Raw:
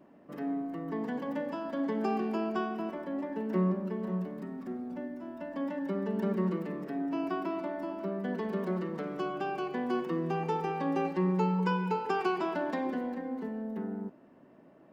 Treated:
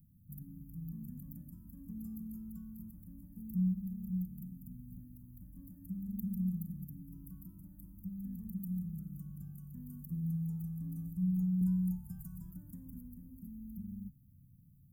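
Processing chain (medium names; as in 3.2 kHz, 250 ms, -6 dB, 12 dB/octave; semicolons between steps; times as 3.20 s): inverse Chebyshev band-stop 350–4700 Hz, stop band 60 dB; 11.61–12.51 s: comb 1.2 ms, depth 83%; trim +18 dB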